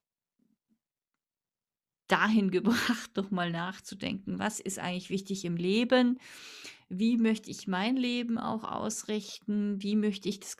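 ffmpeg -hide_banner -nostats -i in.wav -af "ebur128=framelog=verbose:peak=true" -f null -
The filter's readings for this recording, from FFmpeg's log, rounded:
Integrated loudness:
  I:         -30.7 LUFS
  Threshold: -41.0 LUFS
Loudness range:
  LRA:         2.3 LU
  Threshold: -51.2 LUFS
  LRA low:   -32.4 LUFS
  LRA high:  -30.1 LUFS
True peak:
  Peak:       -9.8 dBFS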